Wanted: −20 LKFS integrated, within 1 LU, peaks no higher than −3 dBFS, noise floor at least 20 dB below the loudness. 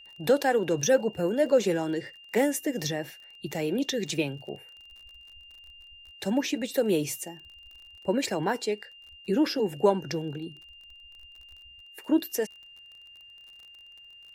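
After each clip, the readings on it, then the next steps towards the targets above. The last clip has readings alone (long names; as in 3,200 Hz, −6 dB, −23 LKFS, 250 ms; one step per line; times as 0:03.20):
crackle rate 34 per second; interfering tone 2,800 Hz; level of the tone −48 dBFS; integrated loudness −28.0 LKFS; sample peak −8.5 dBFS; target loudness −20.0 LKFS
→ click removal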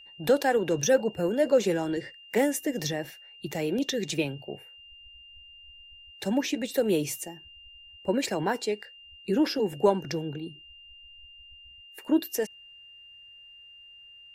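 crackle rate 0.070 per second; interfering tone 2,800 Hz; level of the tone −48 dBFS
→ notch filter 2,800 Hz, Q 30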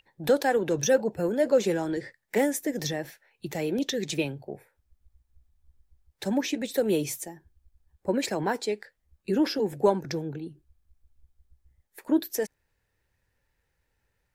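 interfering tone none found; integrated loudness −28.0 LKFS; sample peak −9.0 dBFS; target loudness −20.0 LKFS
→ level +8 dB
brickwall limiter −3 dBFS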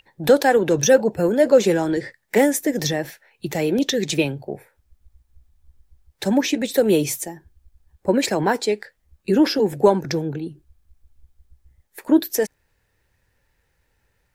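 integrated loudness −20.0 LKFS; sample peak −3.0 dBFS; background noise floor −69 dBFS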